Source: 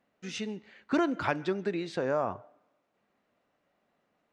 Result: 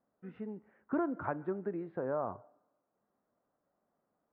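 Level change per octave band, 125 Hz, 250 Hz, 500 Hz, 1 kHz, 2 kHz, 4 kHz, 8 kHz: −5.5 dB, −5.5 dB, −5.5 dB, −6.0 dB, −11.5 dB, below −30 dB, can't be measured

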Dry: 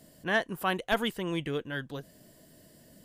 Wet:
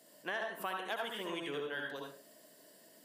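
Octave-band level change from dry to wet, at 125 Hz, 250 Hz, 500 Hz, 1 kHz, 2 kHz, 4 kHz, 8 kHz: −18.0, −12.0, −7.5, −7.0, −7.5, −6.5, −5.5 decibels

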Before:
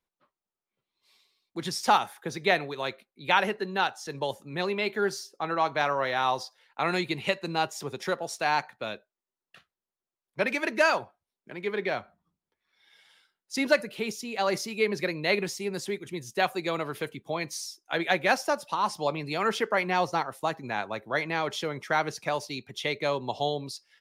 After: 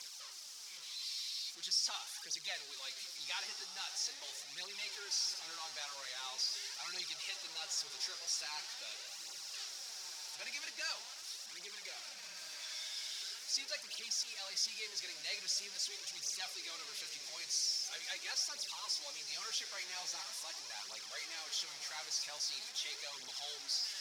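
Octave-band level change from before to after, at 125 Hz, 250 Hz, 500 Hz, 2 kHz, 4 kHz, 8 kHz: below −35 dB, −33.5 dB, −29.0 dB, −16.5 dB, −1.5 dB, +3.0 dB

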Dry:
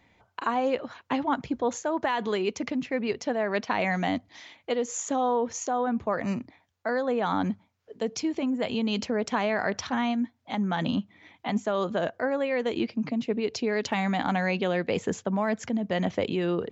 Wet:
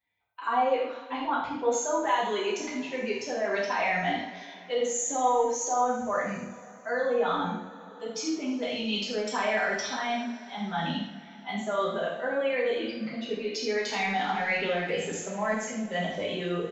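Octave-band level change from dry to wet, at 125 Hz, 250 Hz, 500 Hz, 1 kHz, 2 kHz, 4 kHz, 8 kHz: −6.0 dB, −6.0 dB, −0.5 dB, +1.5 dB, +1.5 dB, +2.5 dB, can't be measured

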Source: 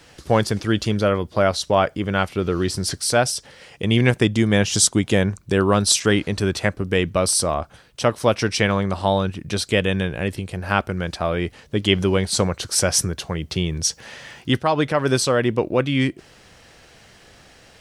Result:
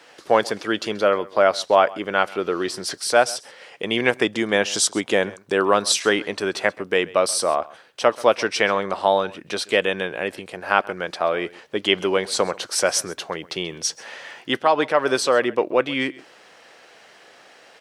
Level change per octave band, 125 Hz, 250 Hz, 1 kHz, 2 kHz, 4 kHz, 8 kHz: −17.0, −6.0, +2.5, +2.0, −1.0, −4.0 decibels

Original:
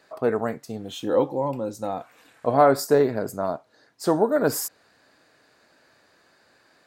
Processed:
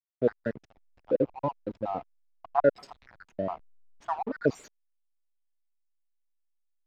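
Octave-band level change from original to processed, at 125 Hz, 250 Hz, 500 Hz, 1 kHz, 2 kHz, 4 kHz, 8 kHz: −7.5 dB, −7.5 dB, −7.5 dB, −7.5 dB, −7.0 dB, below −15 dB, below −20 dB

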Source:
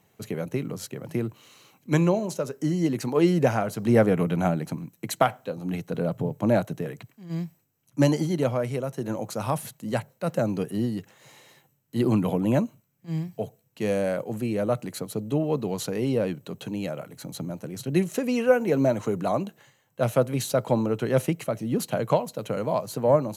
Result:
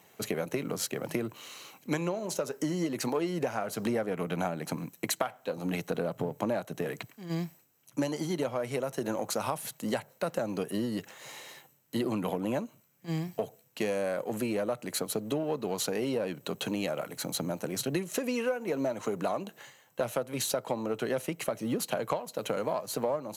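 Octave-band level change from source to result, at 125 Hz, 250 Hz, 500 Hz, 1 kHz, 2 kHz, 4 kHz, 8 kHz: −11.0, −7.5, −6.5, −5.5, −3.5, +1.0, +1.5 decibels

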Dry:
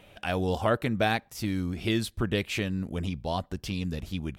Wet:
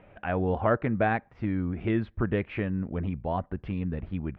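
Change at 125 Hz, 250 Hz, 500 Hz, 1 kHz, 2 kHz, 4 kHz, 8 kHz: +1.0 dB, +1.0 dB, +1.0 dB, +1.0 dB, −1.5 dB, −16.5 dB, below −35 dB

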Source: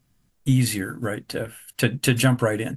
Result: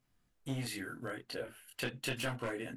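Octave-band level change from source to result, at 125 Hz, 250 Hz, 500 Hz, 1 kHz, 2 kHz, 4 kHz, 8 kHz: −21.0, −18.5, −14.5, −13.0, −13.0, −12.5, −17.0 decibels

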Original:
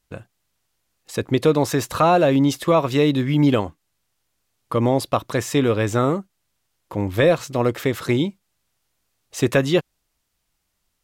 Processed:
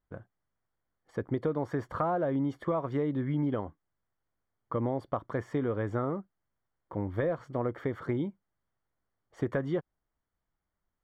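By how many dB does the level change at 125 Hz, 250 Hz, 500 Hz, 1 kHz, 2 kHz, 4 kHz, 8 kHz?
−11.5 dB, −12.0 dB, −13.0 dB, −13.0 dB, −15.5 dB, below −25 dB, below −30 dB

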